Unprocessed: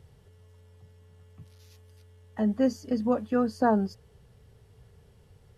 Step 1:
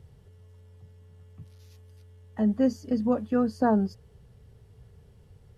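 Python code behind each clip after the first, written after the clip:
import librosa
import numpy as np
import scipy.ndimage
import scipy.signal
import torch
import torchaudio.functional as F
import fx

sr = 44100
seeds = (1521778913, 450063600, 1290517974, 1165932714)

y = fx.low_shelf(x, sr, hz=370.0, db=6.0)
y = y * 10.0 ** (-2.5 / 20.0)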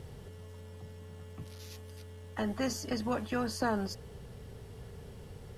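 y = fx.spectral_comp(x, sr, ratio=2.0)
y = y * 10.0 ** (-7.0 / 20.0)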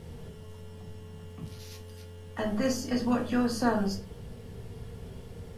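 y = fx.room_shoebox(x, sr, seeds[0], volume_m3=240.0, walls='furnished', distance_m=1.7)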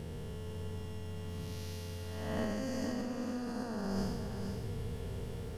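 y = fx.spec_blur(x, sr, span_ms=370.0)
y = fx.over_compress(y, sr, threshold_db=-36.0, ratio=-1.0)
y = y + 10.0 ** (-7.0 / 20.0) * np.pad(y, (int(470 * sr / 1000.0), 0))[:len(y)]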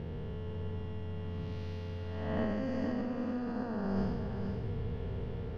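y = fx.air_absorb(x, sr, metres=310.0)
y = y * 10.0 ** (3.0 / 20.0)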